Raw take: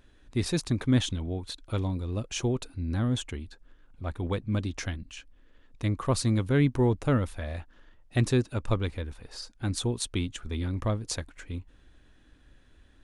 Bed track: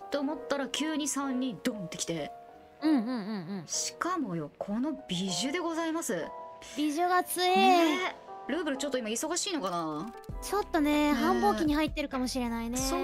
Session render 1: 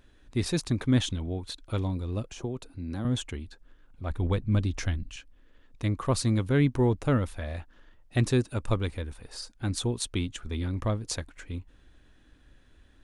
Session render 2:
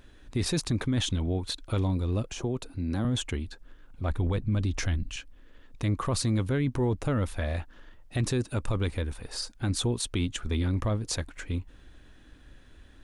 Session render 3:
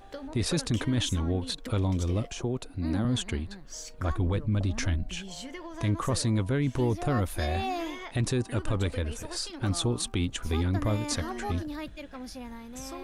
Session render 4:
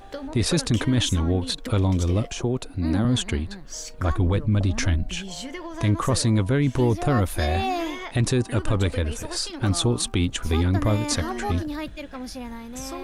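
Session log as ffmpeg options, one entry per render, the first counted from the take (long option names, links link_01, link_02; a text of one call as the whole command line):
ffmpeg -i in.wav -filter_complex "[0:a]asettb=1/sr,asplit=3[link_01][link_02][link_03];[link_01]atrim=end=2.264[link_04];[link_02]atrim=start=2.26:end=3.05,asetpts=PTS-STARTPTS,afade=type=in:duration=0.004:curve=qsin,afade=type=out:start_time=0.786:duration=0.004:curve=qsin,acrossover=split=160|1100|4400[link_05][link_06][link_07][link_08];[link_05]acompressor=threshold=-41dB:ratio=3[link_09];[link_06]acompressor=threshold=-33dB:ratio=3[link_10];[link_07]acompressor=threshold=-54dB:ratio=3[link_11];[link_08]acompressor=threshold=-52dB:ratio=3[link_12];[link_09][link_10][link_11][link_12]amix=inputs=4:normalize=0[link_13];[link_03]atrim=start=3.046[link_14];[link_04][link_13]acrossfade=duration=0.004:curve1=hsin:curve2=qsin[link_15];[link_15][link_14]acrossfade=duration=0.004:curve1=qsin:curve2=hsin,asettb=1/sr,asplit=3[link_16][link_17][link_18];[link_16]atrim=end=4.104[link_19];[link_17]atrim=start=4.1:end=5.16,asetpts=PTS-STARTPTS,afade=type=in:duration=0.004:curve=qsin,afade=type=out:start_time=1.056:duration=0.004:curve=qsin,lowshelf=frequency=90:gain=11[link_20];[link_18]atrim=start=5.156[link_21];[link_19][link_20]acrossfade=duration=0.004:curve1=hsin:curve2=qsin[link_22];[link_22][link_21]acrossfade=duration=0.004:curve1=qsin:curve2=hsin,asettb=1/sr,asplit=3[link_23][link_24][link_25];[link_23]atrim=end=8.334[link_26];[link_24]atrim=start=8.33:end=9.53,asetpts=PTS-STARTPTS,afade=type=in:duration=0.004:curve=qsin,afade=type=out:start_time=1.196:duration=0.004:curve=qsin,equalizer=frequency=9000:width=2.2:gain=6.5[link_27];[link_25]atrim=start=9.526[link_28];[link_26][link_27]acrossfade=duration=0.004:curve1=hsin:curve2=qsin[link_29];[link_29][link_28]acrossfade=duration=0.004:curve1=qsin:curve2=hsin" out.wav
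ffmpeg -i in.wav -filter_complex "[0:a]asplit=2[link_01][link_02];[link_02]acompressor=threshold=-31dB:ratio=6,volume=-1.5dB[link_03];[link_01][link_03]amix=inputs=2:normalize=0,alimiter=limit=-20dB:level=0:latency=1:release=11" out.wav
ffmpeg -i in.wav -i bed.wav -filter_complex "[1:a]volume=-9.5dB[link_01];[0:a][link_01]amix=inputs=2:normalize=0" out.wav
ffmpeg -i in.wav -af "volume=6dB" out.wav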